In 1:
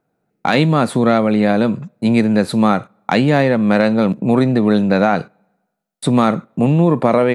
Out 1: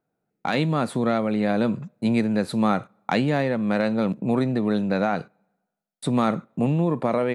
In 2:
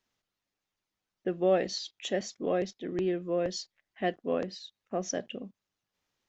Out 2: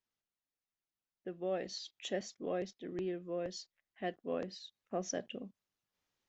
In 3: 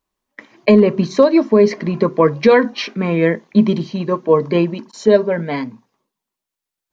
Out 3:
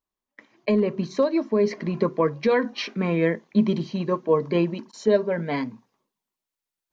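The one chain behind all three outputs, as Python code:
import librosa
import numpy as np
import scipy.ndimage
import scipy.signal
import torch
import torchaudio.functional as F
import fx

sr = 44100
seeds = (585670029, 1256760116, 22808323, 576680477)

y = fx.rider(x, sr, range_db=4, speed_s=0.5)
y = F.gain(torch.from_numpy(y), -8.0).numpy()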